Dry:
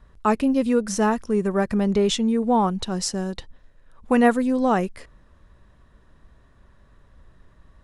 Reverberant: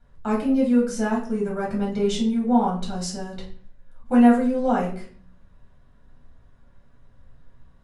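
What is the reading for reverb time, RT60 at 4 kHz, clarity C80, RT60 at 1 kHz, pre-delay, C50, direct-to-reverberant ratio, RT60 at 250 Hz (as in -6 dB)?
0.50 s, 0.35 s, 12.0 dB, 0.45 s, 4 ms, 7.5 dB, -4.5 dB, 0.75 s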